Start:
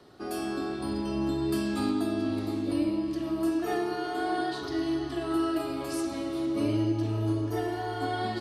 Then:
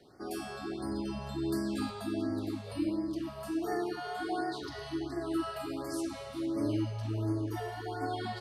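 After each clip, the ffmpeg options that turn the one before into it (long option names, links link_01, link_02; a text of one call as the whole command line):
ffmpeg -i in.wav -af "afftfilt=real='re*(1-between(b*sr/1024,260*pow(3200/260,0.5+0.5*sin(2*PI*1.4*pts/sr))/1.41,260*pow(3200/260,0.5+0.5*sin(2*PI*1.4*pts/sr))*1.41))':imag='im*(1-between(b*sr/1024,260*pow(3200/260,0.5+0.5*sin(2*PI*1.4*pts/sr))/1.41,260*pow(3200/260,0.5+0.5*sin(2*PI*1.4*pts/sr))*1.41))':win_size=1024:overlap=0.75,volume=-4dB" out.wav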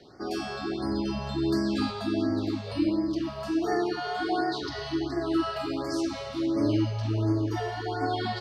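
ffmpeg -i in.wav -af "highshelf=frequency=7500:width_type=q:width=1.5:gain=-12,volume=6.5dB" out.wav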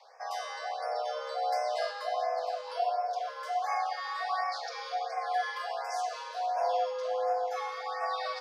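ffmpeg -i in.wav -af "afreqshift=400,volume=-4.5dB" out.wav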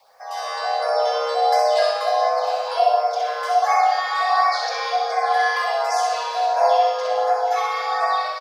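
ffmpeg -i in.wav -af "dynaudnorm=framelen=120:gausssize=7:maxgain=12dB,acrusher=bits=10:mix=0:aa=0.000001,aecho=1:1:64|128|192|256|320:0.668|0.267|0.107|0.0428|0.0171" out.wav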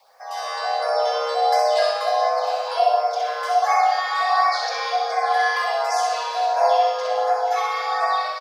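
ffmpeg -i in.wav -af "lowshelf=frequency=390:gain=-3.5" out.wav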